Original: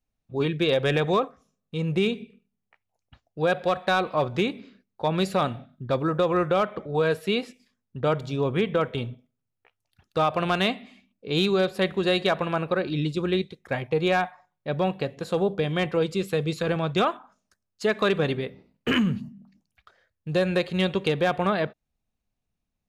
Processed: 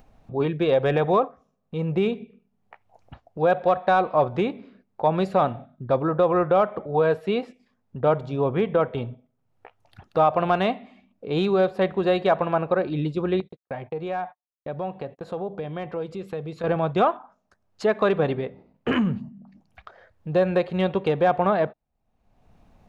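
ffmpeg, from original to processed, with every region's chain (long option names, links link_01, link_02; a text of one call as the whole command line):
ffmpeg -i in.wav -filter_complex "[0:a]asettb=1/sr,asplit=3[link_01][link_02][link_03];[link_01]atrim=end=13.404[link_04];[link_02]atrim=start=13.4:end=16.64,asetpts=PTS-STARTPTS,afade=type=in:duration=0.004:curve=qsin,afade=type=out:start_time=3.236:duration=0.004:curve=qsin,agate=range=-50dB:threshold=-44dB:ratio=16:release=100:detection=peak,acompressor=threshold=-36dB:ratio=2:attack=3.2:release=140:knee=1:detection=peak[link_05];[link_03]atrim=start=16.636[link_06];[link_04][link_05]acrossfade=duration=0.004:curve1=hsin:curve2=qsin[link_07];[link_07][link_06]acrossfade=duration=0.004:curve1=qsin:curve2=hsin,lowpass=frequency=1500:poles=1,equalizer=frequency=770:width_type=o:width=1.2:gain=7.5,acompressor=mode=upward:threshold=-33dB:ratio=2.5" out.wav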